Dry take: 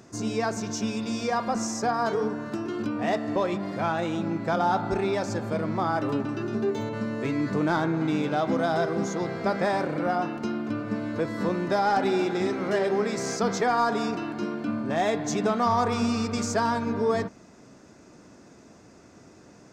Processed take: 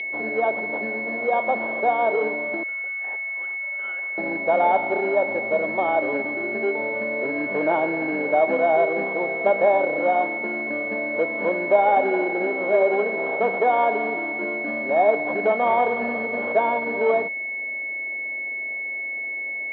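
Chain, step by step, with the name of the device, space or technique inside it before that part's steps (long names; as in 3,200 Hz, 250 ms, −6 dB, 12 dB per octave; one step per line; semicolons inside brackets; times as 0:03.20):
0:02.63–0:04.18: Butterworth high-pass 1,400 Hz 48 dB per octave
toy sound module (linearly interpolated sample-rate reduction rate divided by 8×; switching amplifier with a slow clock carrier 2,200 Hz; loudspeaker in its box 540–4,100 Hz, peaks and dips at 590 Hz +6 dB, 1,200 Hz −6 dB, 3,200 Hz +9 dB)
level +8.5 dB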